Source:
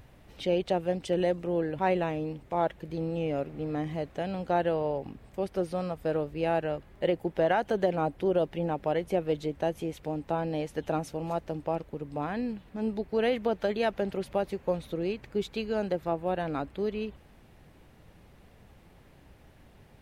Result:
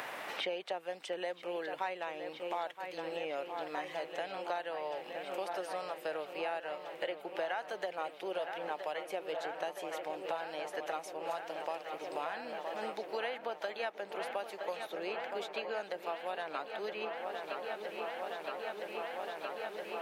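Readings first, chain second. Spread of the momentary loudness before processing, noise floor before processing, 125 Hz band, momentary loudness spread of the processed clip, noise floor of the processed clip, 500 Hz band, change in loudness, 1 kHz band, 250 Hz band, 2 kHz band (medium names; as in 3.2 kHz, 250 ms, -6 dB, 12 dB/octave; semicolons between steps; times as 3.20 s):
7 LU, -56 dBFS, -27.0 dB, 3 LU, -50 dBFS, -8.5 dB, -8.5 dB, -4.5 dB, -17.0 dB, -1.0 dB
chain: high-pass 850 Hz 12 dB/octave; feedback echo behind a low-pass 967 ms, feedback 83%, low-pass 3.6 kHz, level -11 dB; three bands compressed up and down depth 100%; trim -2.5 dB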